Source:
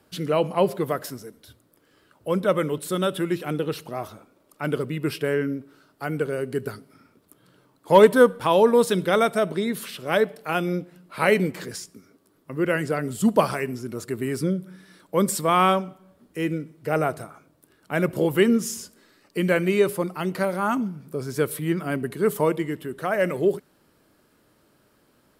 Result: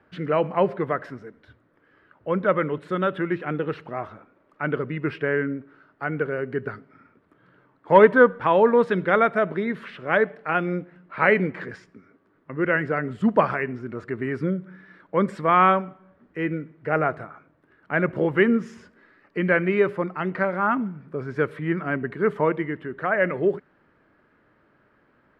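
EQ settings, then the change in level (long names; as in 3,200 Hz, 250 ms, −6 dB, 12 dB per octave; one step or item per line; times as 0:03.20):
low-pass with resonance 1,800 Hz, resonance Q 2.1
−1.0 dB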